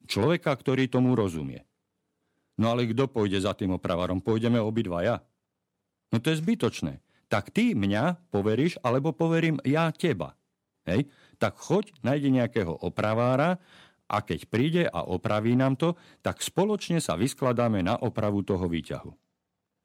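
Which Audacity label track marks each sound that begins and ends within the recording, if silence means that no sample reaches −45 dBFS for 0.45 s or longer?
2.580000	5.190000	sound
6.120000	10.300000	sound
10.860000	19.130000	sound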